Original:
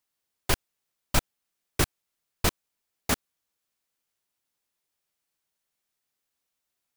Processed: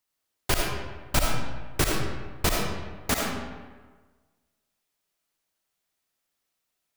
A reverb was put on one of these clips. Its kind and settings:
comb and all-pass reverb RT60 1.4 s, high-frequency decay 0.65×, pre-delay 30 ms, DRR −1 dB

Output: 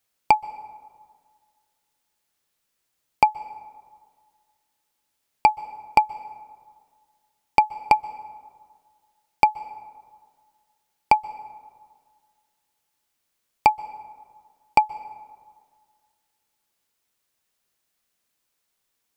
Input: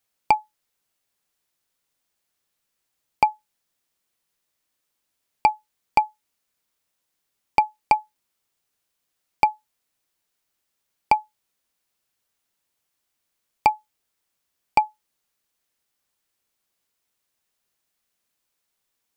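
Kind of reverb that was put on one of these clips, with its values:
dense smooth reverb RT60 1.9 s, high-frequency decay 0.45×, pre-delay 115 ms, DRR 19 dB
level +1.5 dB

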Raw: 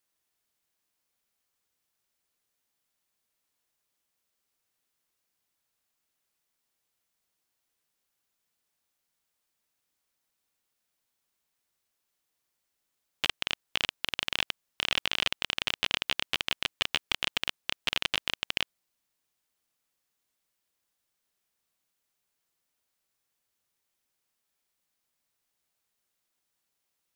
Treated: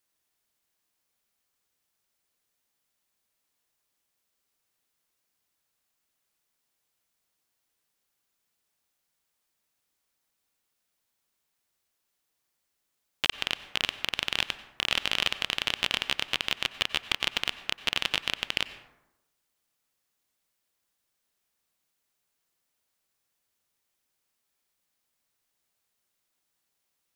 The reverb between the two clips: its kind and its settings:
dense smooth reverb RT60 0.96 s, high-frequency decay 0.45×, pre-delay 80 ms, DRR 13.5 dB
level +1.5 dB

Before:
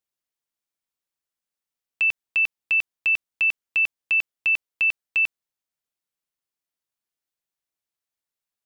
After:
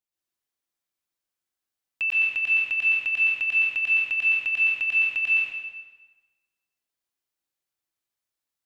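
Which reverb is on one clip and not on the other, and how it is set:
dense smooth reverb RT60 1.3 s, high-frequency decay 0.85×, pre-delay 105 ms, DRR −6 dB
level −5.5 dB

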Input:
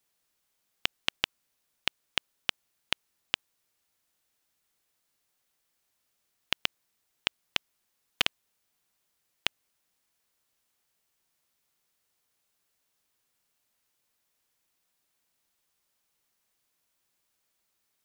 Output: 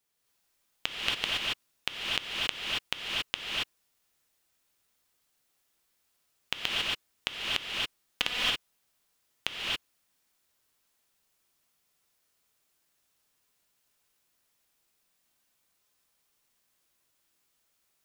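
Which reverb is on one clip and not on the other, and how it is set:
reverb whose tail is shaped and stops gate 300 ms rising, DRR −5 dB
level −3.5 dB

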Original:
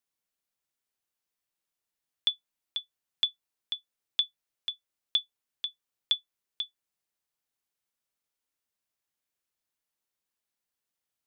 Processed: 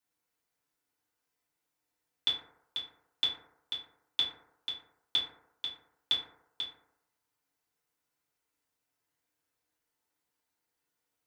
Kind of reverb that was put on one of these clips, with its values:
feedback delay network reverb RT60 0.81 s, low-frequency decay 0.8×, high-frequency decay 0.3×, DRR −8.5 dB
level −3 dB

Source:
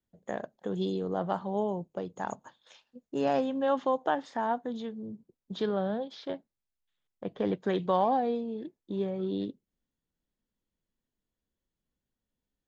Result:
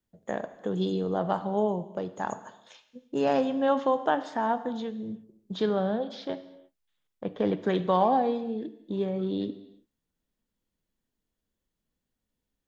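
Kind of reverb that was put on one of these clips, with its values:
reverb whose tail is shaped and stops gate 370 ms falling, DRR 11 dB
level +3 dB

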